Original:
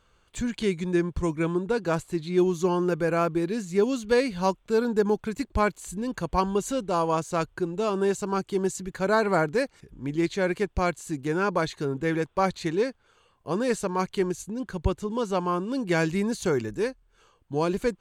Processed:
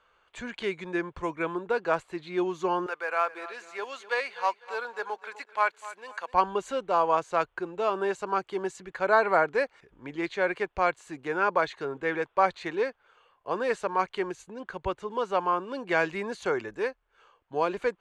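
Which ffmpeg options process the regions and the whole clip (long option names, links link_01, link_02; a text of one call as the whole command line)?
ffmpeg -i in.wav -filter_complex "[0:a]asettb=1/sr,asplit=3[link_01][link_02][link_03];[link_01]atrim=end=2.864[link_04];[link_02]atrim=start=2.86:end=6.34,asetpts=PTS-STARTPTS,afade=type=in:duration=0.004:curve=qsin,afade=type=out:start_time=3.476:duration=0.004:curve=qsin,highpass=820,acrusher=bits=5:mode=log:mix=0:aa=0.000001,aecho=1:1:251|502|753:0.158|0.0507|0.0162,atrim=end_sample=153468[link_05];[link_03]atrim=start=6.336[link_06];[link_04][link_05]acrossfade=duration=0.004:curve1=hsin:curve2=qsin[link_07];[link_07][link_06]acrossfade=duration=0.004:curve1=qsin:curve2=hsin,lowpass=9200,acrossover=split=460 3100:gain=0.126 1 0.178[link_08][link_09][link_10];[link_08][link_09][link_10]amix=inputs=3:normalize=0,volume=3dB" out.wav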